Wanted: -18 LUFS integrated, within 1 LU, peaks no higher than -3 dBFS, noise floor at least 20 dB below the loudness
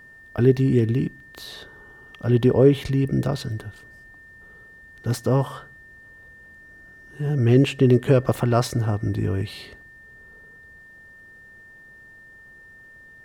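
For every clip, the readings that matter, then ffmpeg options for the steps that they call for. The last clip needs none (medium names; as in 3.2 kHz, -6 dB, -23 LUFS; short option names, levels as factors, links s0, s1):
steady tone 1.8 kHz; tone level -45 dBFS; loudness -21.5 LUFS; peak level -5.0 dBFS; loudness target -18.0 LUFS
-> -af "bandreject=f=1800:w=30"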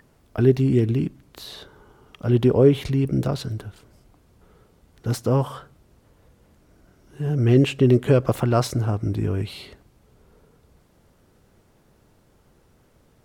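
steady tone not found; loudness -21.5 LUFS; peak level -5.0 dBFS; loudness target -18.0 LUFS
-> -af "volume=1.5,alimiter=limit=0.708:level=0:latency=1"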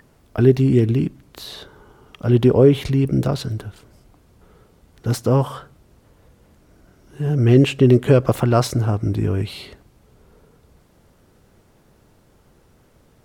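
loudness -18.0 LUFS; peak level -3.0 dBFS; noise floor -56 dBFS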